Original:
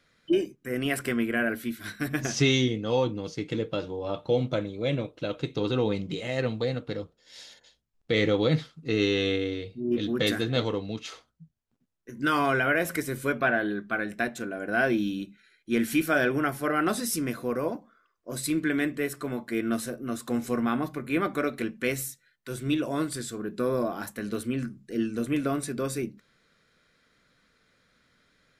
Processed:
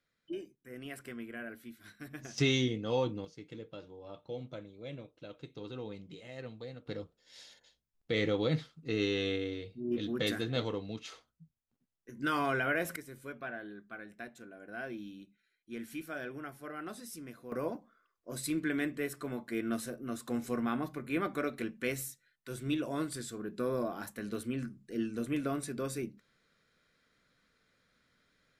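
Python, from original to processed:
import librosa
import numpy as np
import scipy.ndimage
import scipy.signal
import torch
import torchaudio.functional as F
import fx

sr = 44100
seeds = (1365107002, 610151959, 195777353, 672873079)

y = fx.gain(x, sr, db=fx.steps((0.0, -16.5), (2.38, -6.0), (3.25, -16.5), (6.86, -7.0), (12.96, -17.0), (17.52, -6.5)))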